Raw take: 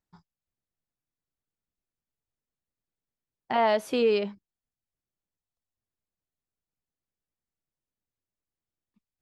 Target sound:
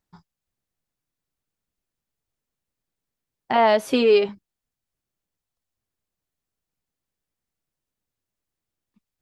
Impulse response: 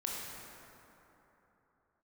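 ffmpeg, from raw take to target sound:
-filter_complex "[0:a]asettb=1/sr,asplit=3[s0][s1][s2];[s0]atrim=end=3.874[s3];[s1]atrim=start=3.87:end=4.29,asetpts=PTS-STARTPTS,afade=t=in:d=0.004:c=qsin,afade=t=out:st=0.416:d=0.004:c=qsin,aecho=1:1:7.4:0.57,atrim=end_sample=18522[s4];[s2]atrim=start=4.286[s5];[s3][s4]acrossfade=d=0.004:c1=hsin:c2=qsin[s6];[s6][s5]acrossfade=d=0.004:c1=qsin:c2=hsin,volume=2"

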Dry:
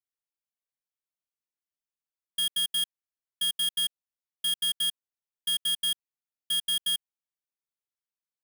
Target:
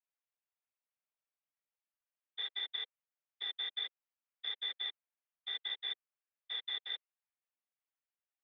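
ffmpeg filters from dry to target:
-af "highpass=f=240:t=q:w=0.5412,highpass=f=240:t=q:w=1.307,lowpass=f=2700:t=q:w=0.5176,lowpass=f=2700:t=q:w=0.7071,lowpass=f=2700:t=q:w=1.932,afreqshift=250,afftfilt=real='hypot(re,im)*cos(2*PI*random(0))':imag='hypot(re,im)*sin(2*PI*random(1))':win_size=512:overlap=0.75,volume=1.88"

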